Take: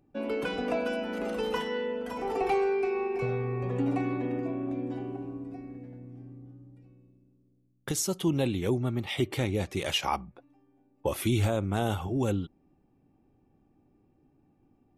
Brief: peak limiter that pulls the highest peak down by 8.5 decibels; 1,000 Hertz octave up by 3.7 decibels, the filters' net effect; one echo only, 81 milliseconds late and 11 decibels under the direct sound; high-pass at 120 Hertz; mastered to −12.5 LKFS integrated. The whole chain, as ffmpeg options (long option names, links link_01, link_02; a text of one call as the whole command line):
ffmpeg -i in.wav -af "highpass=120,equalizer=frequency=1000:width_type=o:gain=5,alimiter=limit=-20.5dB:level=0:latency=1,aecho=1:1:81:0.282,volume=18.5dB" out.wav